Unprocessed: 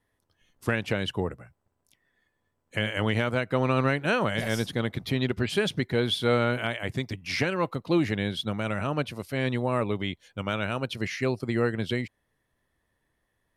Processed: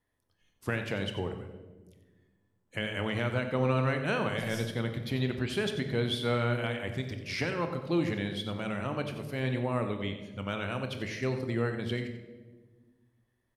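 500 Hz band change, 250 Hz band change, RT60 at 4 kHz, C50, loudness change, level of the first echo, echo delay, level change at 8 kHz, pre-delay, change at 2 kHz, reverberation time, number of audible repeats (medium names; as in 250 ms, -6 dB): -4.5 dB, -4.5 dB, 0.85 s, 7.0 dB, -4.5 dB, -12.0 dB, 91 ms, -5.0 dB, 23 ms, -5.0 dB, 1.4 s, 1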